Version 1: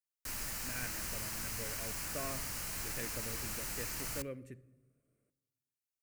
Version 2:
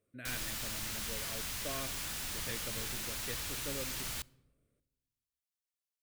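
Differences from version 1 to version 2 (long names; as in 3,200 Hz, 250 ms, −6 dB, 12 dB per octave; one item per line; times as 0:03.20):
speech: entry −0.50 s
master: add parametric band 3,500 Hz +13 dB 0.42 octaves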